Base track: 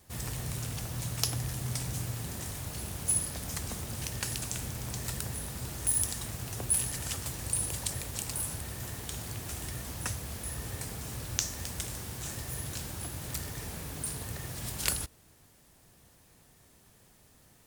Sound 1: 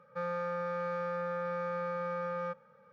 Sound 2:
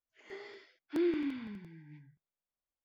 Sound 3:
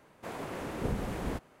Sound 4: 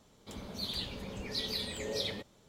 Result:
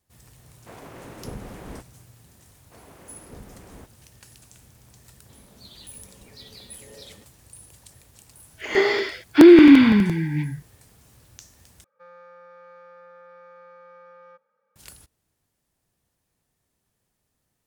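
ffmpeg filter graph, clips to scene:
-filter_complex "[3:a]asplit=2[a][b];[0:a]volume=-15.5dB[c];[2:a]alimiter=level_in=30dB:limit=-1dB:release=50:level=0:latency=1[d];[1:a]highpass=330[e];[c]asplit=2[f][g];[f]atrim=end=11.844[h];[e]atrim=end=2.92,asetpts=PTS-STARTPTS,volume=-12dB[i];[g]atrim=start=14.756[j];[a]atrim=end=1.6,asetpts=PTS-STARTPTS,volume=-4dB,afade=t=in:d=0.004:c=hsin,afade=t=out:st=1.596:d=0.004:c=hsin,adelay=430[k];[b]atrim=end=1.6,asetpts=PTS-STARTPTS,volume=-11dB,afade=t=in:d=0.004:c=hsin,afade=t=out:st=1.596:d=0.004:c=hsin,adelay=2480[l];[4:a]atrim=end=2.48,asetpts=PTS-STARTPTS,volume=-10dB,afade=t=in:d=0.004:c=hsin,afade=t=out:st=2.476:d=0.004:c=hsin,adelay=5020[m];[d]atrim=end=2.84,asetpts=PTS-STARTPTS,volume=-2dB,afade=t=in:d=0.004:c=hsin,afade=t=out:st=2.836:d=0.004:c=hsin,adelay=8450[n];[h][i]acrossfade=d=0.004:c1=hsin:c2=hsin[o];[o][j]acrossfade=d=0.004:c1=hsin:c2=hsin[p];[p][k][l][m][n]amix=inputs=5:normalize=0"

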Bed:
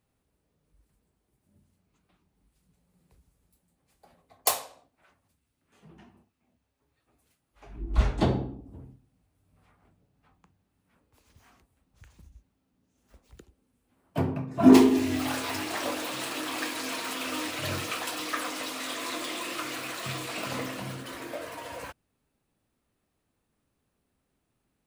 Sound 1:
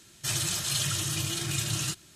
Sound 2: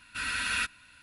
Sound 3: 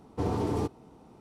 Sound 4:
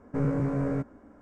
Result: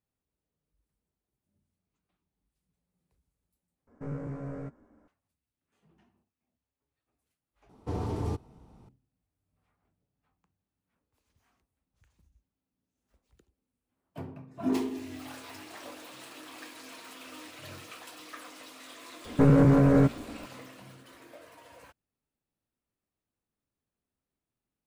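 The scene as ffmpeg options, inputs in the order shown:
-filter_complex "[4:a]asplit=2[a][b];[0:a]volume=-13.5dB[c];[a]asplit=2[d][e];[e]adelay=13,volume=-13dB[f];[d][f]amix=inputs=2:normalize=0[g];[3:a]asubboost=boost=10:cutoff=150[h];[b]alimiter=level_in=21dB:limit=-1dB:release=50:level=0:latency=1[i];[c]asplit=3[j][k][l];[j]atrim=end=3.874[m];[g]atrim=end=1.21,asetpts=PTS-STARTPTS,volume=-10dB[n];[k]atrim=start=5.076:end=7.694[o];[h]atrim=end=1.2,asetpts=PTS-STARTPTS,volume=-4.5dB[p];[l]atrim=start=8.886[q];[i]atrim=end=1.21,asetpts=PTS-STARTPTS,volume=-11dB,afade=t=in:d=0.004:c=hsin,afade=t=out:st=1.206:d=0.004:c=hsin,adelay=19250[r];[m][n]acrossfade=d=0.004:c1=hsin:c2=hsin[s];[s][o]acrossfade=d=0.004:c1=hsin:c2=hsin[t];[t][p]acrossfade=d=0.004:c1=hsin:c2=hsin[u];[u][q]acrossfade=d=0.004:c1=hsin:c2=hsin[v];[v][r]amix=inputs=2:normalize=0"

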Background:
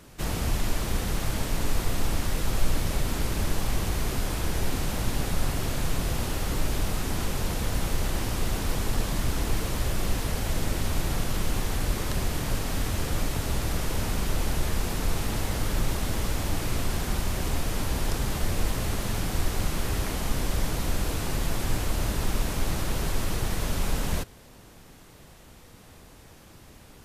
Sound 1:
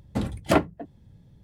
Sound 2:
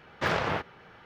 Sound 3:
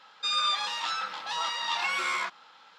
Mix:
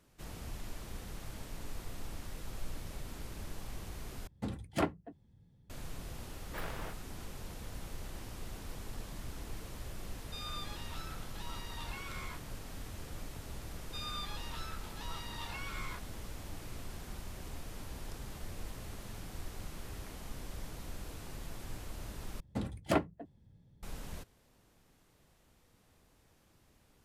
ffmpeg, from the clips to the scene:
-filter_complex "[1:a]asplit=2[a][b];[3:a]asplit=2[c][d];[0:a]volume=-17dB[e];[a]bandreject=f=600:w=9.2[f];[2:a]aexciter=amount=12.3:drive=3.5:freq=9.3k[g];[e]asplit=3[h][i][j];[h]atrim=end=4.274[k];[f]atrim=end=1.43,asetpts=PTS-STARTPTS,volume=-11dB[l];[i]atrim=start=5.696:end=22.404[m];[b]atrim=end=1.43,asetpts=PTS-STARTPTS,volume=-9.5dB[n];[j]atrim=start=23.826[o];[g]atrim=end=1.05,asetpts=PTS-STARTPTS,volume=-16.5dB,afade=t=in:d=0.004:c=hsin,afade=t=out:st=1.046:d=0.004:c=hsin,adelay=6320[p];[c]atrim=end=2.78,asetpts=PTS-STARTPTS,volume=-17.5dB,afade=t=in:d=0.004:c=hsin,afade=t=out:st=2.776:d=0.004:c=hsin,adelay=10090[q];[d]atrim=end=2.78,asetpts=PTS-STARTPTS,volume=-15.5dB,afade=t=in:d=0.004:c=hsin,afade=t=out:st=2.776:d=0.004:c=hsin,adelay=13700[r];[k][l]acrossfade=d=0.004:c1=hsin:c2=hsin[s];[s][m]acrossfade=d=0.004:c1=hsin:c2=hsin[t];[t][n]acrossfade=d=0.004:c1=hsin:c2=hsin[u];[u][o]acrossfade=d=0.004:c1=hsin:c2=hsin[v];[v][p][q][r]amix=inputs=4:normalize=0"

